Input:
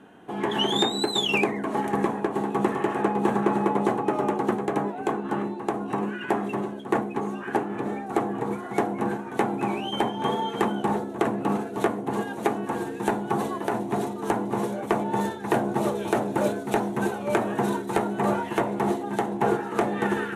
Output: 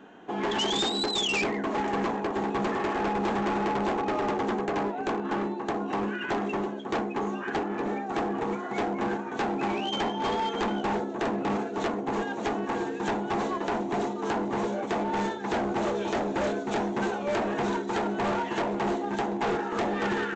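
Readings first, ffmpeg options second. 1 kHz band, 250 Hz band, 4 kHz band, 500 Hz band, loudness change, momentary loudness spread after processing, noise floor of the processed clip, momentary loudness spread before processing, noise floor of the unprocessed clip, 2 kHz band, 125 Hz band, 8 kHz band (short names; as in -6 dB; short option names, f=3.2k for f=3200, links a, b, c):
-2.0 dB, -3.0 dB, -1.5 dB, -3.0 dB, -2.5 dB, 3 LU, -35 dBFS, 5 LU, -36 dBFS, -0.5 dB, -4.5 dB, -1.5 dB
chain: -af "equalizer=f=110:w=1.5:g=-12,aresample=16000,volume=26dB,asoftclip=hard,volume=-26dB,aresample=44100,volume=1.5dB"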